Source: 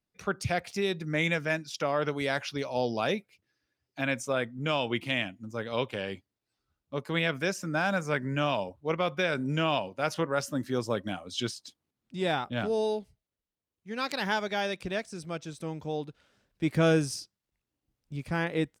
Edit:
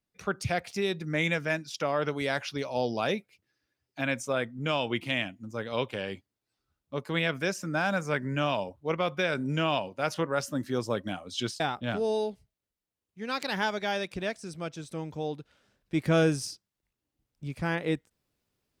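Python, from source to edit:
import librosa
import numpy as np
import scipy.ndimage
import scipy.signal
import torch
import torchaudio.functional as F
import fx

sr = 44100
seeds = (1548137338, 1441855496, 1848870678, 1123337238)

y = fx.edit(x, sr, fx.cut(start_s=11.6, length_s=0.69), tone=tone)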